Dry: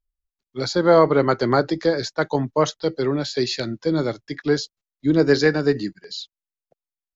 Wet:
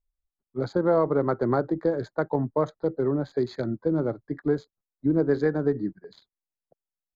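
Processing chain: local Wiener filter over 15 samples; compression 2:1, threshold -22 dBFS, peak gain reduction 7.5 dB; boxcar filter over 16 samples

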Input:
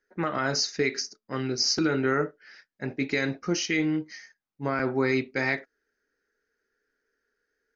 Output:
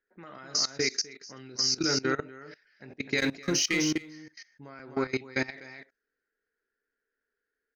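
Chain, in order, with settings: level-controlled noise filter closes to 2.6 kHz, open at -23.5 dBFS; 3.18–3.93 s: waveshaping leveller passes 1; treble shelf 3.6 kHz +11 dB; in parallel at +1.5 dB: compression 8:1, threshold -29 dBFS, peak gain reduction 14.5 dB; on the sum: delay 253 ms -6.5 dB; level held to a coarse grid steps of 20 dB; trim -6 dB

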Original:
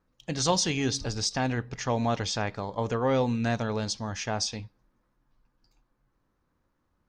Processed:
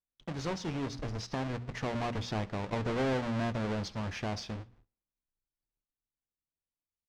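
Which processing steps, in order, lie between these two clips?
square wave that keeps the level; Doppler pass-by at 3.13 s, 8 m/s, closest 9.8 m; hum notches 60/120/180/240 Hz; gate -60 dBFS, range -30 dB; treble shelf 4.5 kHz -6 dB; compression 2:1, threshold -47 dBFS, peak gain reduction 15.5 dB; distance through air 100 m; feedback delay 71 ms, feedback 49%, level -24 dB; trim +5.5 dB

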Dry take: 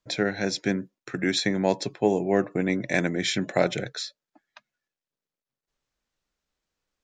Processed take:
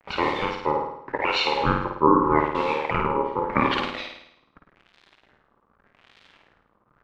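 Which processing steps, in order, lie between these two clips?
sawtooth pitch modulation -6.5 st, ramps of 415 ms; hum notches 60/120 Hz; in parallel at -2 dB: compression, threshold -31 dBFS, peak gain reduction 14.5 dB; on the sum: bit crusher 6-bit; crackle 130 per s -36 dBFS; LFO low-pass sine 0.85 Hz 430–3100 Hz; ring modulator 690 Hz; on a send: flutter echo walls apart 9.1 m, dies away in 0.73 s; on the sum: trim +1 dB

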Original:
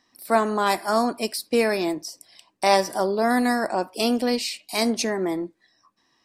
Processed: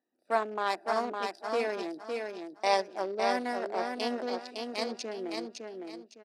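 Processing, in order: local Wiener filter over 41 samples; band-pass 390–6700 Hz; feedback delay 559 ms, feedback 29%, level -4.5 dB; trim -6.5 dB

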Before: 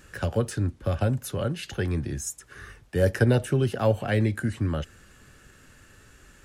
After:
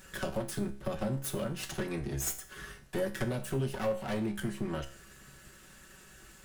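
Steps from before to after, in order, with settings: comb filter that takes the minimum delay 5.3 ms; compression 3:1, threshold -32 dBFS, peak gain reduction 11 dB; treble shelf 7.4 kHz +6.5 dB; feedback comb 68 Hz, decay 0.43 s, harmonics all, mix 70%; trim +6 dB

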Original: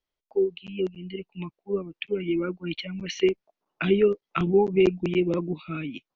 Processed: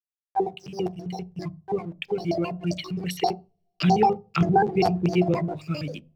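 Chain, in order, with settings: pitch shift switched off and on +11.5 st, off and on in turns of 66 ms; gate with hold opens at -38 dBFS; hysteresis with a dead band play -49.5 dBFS; on a send: fifteen-band graphic EQ 160 Hz +4 dB, 630 Hz +8 dB, 1.6 kHz -4 dB + reverberation RT60 0.30 s, pre-delay 3 ms, DRR 13 dB

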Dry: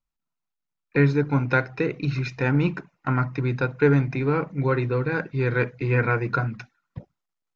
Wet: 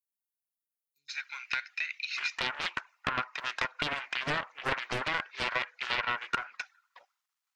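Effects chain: inverse Chebyshev high-pass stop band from 1.9 kHz, stop band 80 dB, from 1.08 s stop band from 350 Hz, from 2.16 s stop band from 160 Hz; compression 5:1, threshold -34 dBFS, peak gain reduction 13.5 dB; loudspeaker Doppler distortion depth 0.82 ms; trim +5.5 dB

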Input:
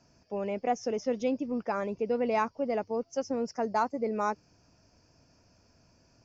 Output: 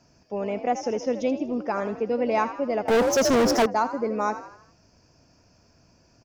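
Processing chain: on a send: frequency-shifting echo 80 ms, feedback 48%, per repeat +57 Hz, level -12 dB; 2.88–3.66 s: on the sum: waveshaping leveller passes 5; trim +4 dB

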